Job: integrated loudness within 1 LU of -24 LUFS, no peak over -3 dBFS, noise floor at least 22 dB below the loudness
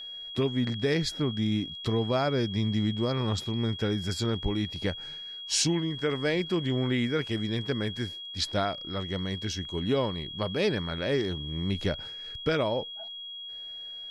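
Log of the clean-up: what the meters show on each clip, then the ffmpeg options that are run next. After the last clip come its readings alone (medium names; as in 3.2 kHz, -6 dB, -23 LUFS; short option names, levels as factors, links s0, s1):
steady tone 3.3 kHz; tone level -38 dBFS; loudness -29.5 LUFS; peak level -14.0 dBFS; loudness target -24.0 LUFS
-> -af "bandreject=f=3300:w=30"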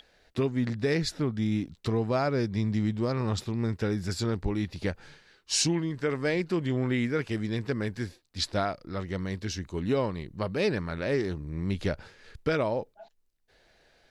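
steady tone not found; loudness -30.0 LUFS; peak level -14.0 dBFS; loudness target -24.0 LUFS
-> -af "volume=2"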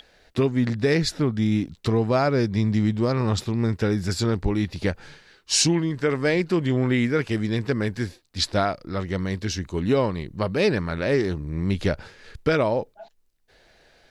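loudness -24.0 LUFS; peak level -8.0 dBFS; noise floor -63 dBFS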